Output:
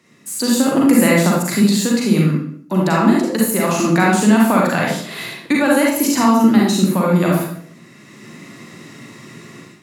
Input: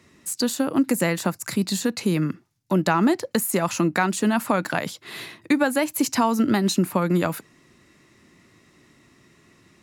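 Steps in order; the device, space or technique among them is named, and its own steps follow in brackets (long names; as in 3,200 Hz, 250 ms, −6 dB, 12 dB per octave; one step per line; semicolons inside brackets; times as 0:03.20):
far laptop microphone (convolution reverb RT60 0.60 s, pre-delay 36 ms, DRR −3.5 dB; high-pass filter 120 Hz 24 dB per octave; automatic gain control gain up to 13.5 dB)
level −1 dB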